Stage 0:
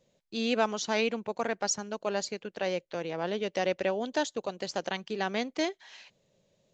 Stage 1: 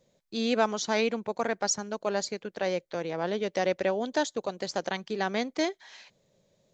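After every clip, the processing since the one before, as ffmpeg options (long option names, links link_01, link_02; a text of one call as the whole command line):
ffmpeg -i in.wav -af "equalizer=frequency=2800:width=5.2:gain=-6.5,volume=2dB" out.wav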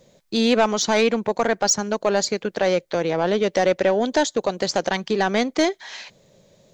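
ffmpeg -i in.wav -filter_complex "[0:a]asplit=2[link_01][link_02];[link_02]acompressor=threshold=-34dB:ratio=6,volume=-1.5dB[link_03];[link_01][link_03]amix=inputs=2:normalize=0,asoftclip=type=tanh:threshold=-16.5dB,volume=8dB" out.wav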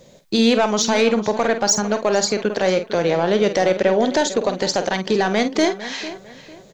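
ffmpeg -i in.wav -filter_complex "[0:a]alimiter=limit=-15.5dB:level=0:latency=1:release=224,asplit=2[link_01][link_02];[link_02]adelay=48,volume=-10dB[link_03];[link_01][link_03]amix=inputs=2:normalize=0,asplit=2[link_04][link_05];[link_05]adelay=451,lowpass=frequency=4500:poles=1,volume=-14.5dB,asplit=2[link_06][link_07];[link_07]adelay=451,lowpass=frequency=4500:poles=1,volume=0.31,asplit=2[link_08][link_09];[link_09]adelay=451,lowpass=frequency=4500:poles=1,volume=0.31[link_10];[link_04][link_06][link_08][link_10]amix=inputs=4:normalize=0,volume=6.5dB" out.wav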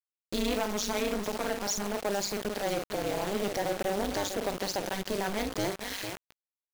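ffmpeg -i in.wav -af "aresample=16000,asoftclip=type=tanh:threshold=-19dB,aresample=44100,acrusher=bits=4:mix=0:aa=0.000001,tremolo=f=200:d=0.974,volume=-4.5dB" out.wav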